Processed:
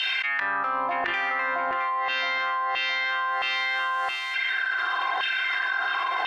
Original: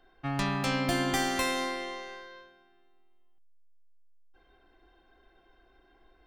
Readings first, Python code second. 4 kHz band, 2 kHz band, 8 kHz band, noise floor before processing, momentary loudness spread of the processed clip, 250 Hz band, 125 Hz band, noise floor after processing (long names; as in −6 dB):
+9.0 dB, +14.5 dB, below −10 dB, −64 dBFS, 2 LU, −12.5 dB, below −20 dB, −29 dBFS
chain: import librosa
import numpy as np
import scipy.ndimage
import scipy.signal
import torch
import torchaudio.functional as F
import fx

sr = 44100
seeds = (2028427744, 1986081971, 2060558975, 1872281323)

p1 = fx.filter_lfo_highpass(x, sr, shape='saw_down', hz=0.96, low_hz=870.0, high_hz=2800.0, q=5.1)
p2 = scipy.signal.sosfilt(scipy.signal.butter(2, 6500.0, 'lowpass', fs=sr, output='sos'), p1)
p3 = fx.env_lowpass_down(p2, sr, base_hz=610.0, full_db=-26.5)
p4 = fx.rider(p3, sr, range_db=10, speed_s=0.5)
p5 = p3 + (p4 * librosa.db_to_amplitude(0.5))
p6 = fx.hum_notches(p5, sr, base_hz=50, count=7)
p7 = p6 + fx.echo_feedback(p6, sr, ms=668, feedback_pct=22, wet_db=-6.5, dry=0)
y = fx.env_flatten(p7, sr, amount_pct=100)